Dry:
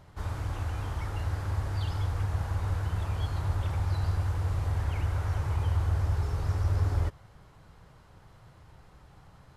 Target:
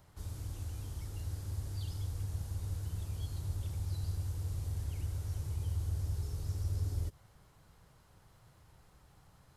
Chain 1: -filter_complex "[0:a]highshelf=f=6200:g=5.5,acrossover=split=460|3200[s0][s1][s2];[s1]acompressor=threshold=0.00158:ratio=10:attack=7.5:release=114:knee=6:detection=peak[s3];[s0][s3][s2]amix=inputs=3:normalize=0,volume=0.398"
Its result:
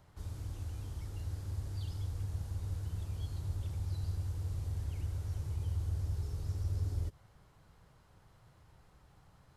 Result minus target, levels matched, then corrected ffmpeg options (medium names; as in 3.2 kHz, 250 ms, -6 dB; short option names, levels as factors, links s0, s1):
8 kHz band -5.0 dB
-filter_complex "[0:a]highshelf=f=6200:g=13.5,acrossover=split=460|3200[s0][s1][s2];[s1]acompressor=threshold=0.00158:ratio=10:attack=7.5:release=114:knee=6:detection=peak[s3];[s0][s3][s2]amix=inputs=3:normalize=0,volume=0.398"